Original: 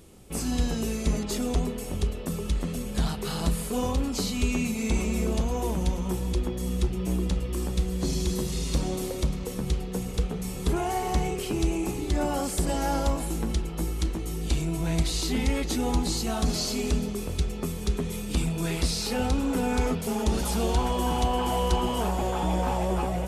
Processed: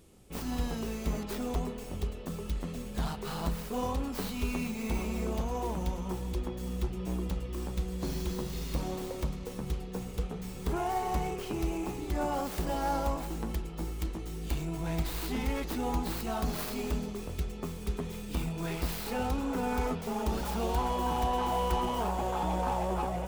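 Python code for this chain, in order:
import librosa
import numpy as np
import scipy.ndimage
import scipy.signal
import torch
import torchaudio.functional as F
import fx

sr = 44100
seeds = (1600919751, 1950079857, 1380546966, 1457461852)

y = fx.tracing_dist(x, sr, depth_ms=0.28)
y = fx.dynamic_eq(y, sr, hz=950.0, q=0.99, threshold_db=-42.0, ratio=4.0, max_db=6)
y = y * 10.0 ** (-7.0 / 20.0)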